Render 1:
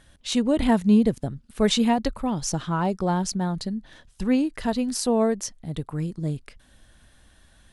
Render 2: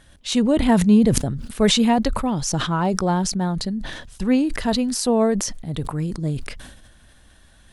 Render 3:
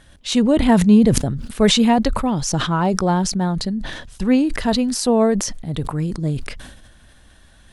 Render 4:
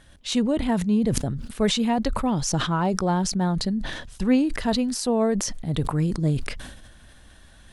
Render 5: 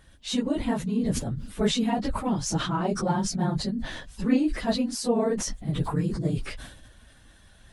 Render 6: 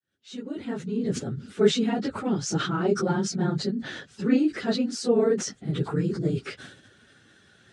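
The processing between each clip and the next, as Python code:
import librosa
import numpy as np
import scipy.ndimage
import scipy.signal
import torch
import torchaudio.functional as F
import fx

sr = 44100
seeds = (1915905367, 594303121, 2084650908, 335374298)

y1 = fx.sustainer(x, sr, db_per_s=50.0)
y1 = y1 * librosa.db_to_amplitude(3.0)
y2 = fx.high_shelf(y1, sr, hz=9300.0, db=-4.0)
y2 = y2 * librosa.db_to_amplitude(2.5)
y3 = fx.rider(y2, sr, range_db=5, speed_s=0.5)
y3 = y3 * librosa.db_to_amplitude(-5.5)
y4 = fx.phase_scramble(y3, sr, seeds[0], window_ms=50)
y4 = y4 * librosa.db_to_amplitude(-3.5)
y5 = fx.fade_in_head(y4, sr, length_s=1.38)
y5 = fx.cabinet(y5, sr, low_hz=110.0, low_slope=24, high_hz=7800.0, hz=(400.0, 640.0, 1000.0, 1400.0), db=(10, -5, -9, 7))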